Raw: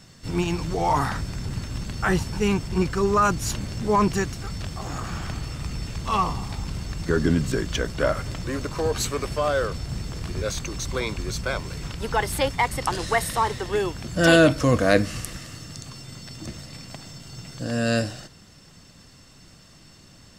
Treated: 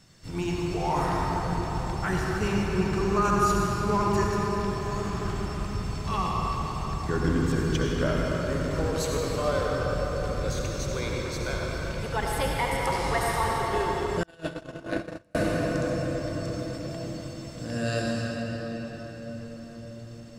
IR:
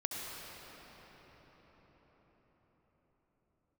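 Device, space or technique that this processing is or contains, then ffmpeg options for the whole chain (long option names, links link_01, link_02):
cathedral: -filter_complex "[1:a]atrim=start_sample=2205[link_01];[0:a][link_01]afir=irnorm=-1:irlink=0,asettb=1/sr,asplit=3[link_02][link_03][link_04];[link_02]atrim=end=14.234[link_05];[link_03]atrim=start=14.23:end=15.35,asetpts=PTS-STARTPTS,afade=type=in:duration=0.004:curve=qsin,afade=type=out:start_time=1.116:duration=0.004:curve=qsin,agate=range=-40dB:threshold=-11dB:ratio=16:detection=peak[link_06];[link_04]atrim=start=15.346[link_07];[link_05][link_06]acrossfade=duration=0.004:curve1=hsin:curve2=qsin[link_08];[link_08][link_07]acrossfade=duration=0.004:curve1=qsin:curve2=hsin,volume=-5.5dB"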